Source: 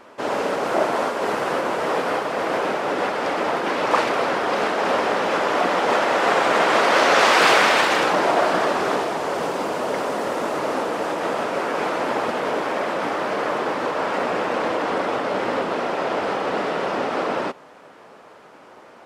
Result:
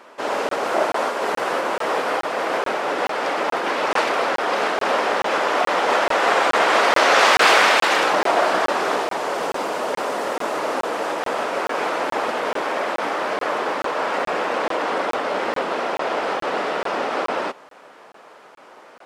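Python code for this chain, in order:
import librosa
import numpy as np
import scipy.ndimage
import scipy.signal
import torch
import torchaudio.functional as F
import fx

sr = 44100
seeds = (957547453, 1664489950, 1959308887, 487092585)

y = fx.highpass(x, sr, hz=440.0, slope=6)
y = fx.buffer_crackle(y, sr, first_s=0.49, period_s=0.43, block=1024, kind='zero')
y = y * librosa.db_to_amplitude(2.0)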